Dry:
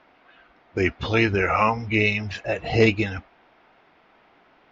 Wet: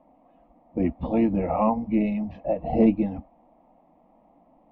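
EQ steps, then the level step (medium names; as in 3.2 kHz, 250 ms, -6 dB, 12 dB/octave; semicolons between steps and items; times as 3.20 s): low-pass 1.3 kHz 12 dB/octave; tilt shelf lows +7 dB; static phaser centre 400 Hz, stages 6; 0.0 dB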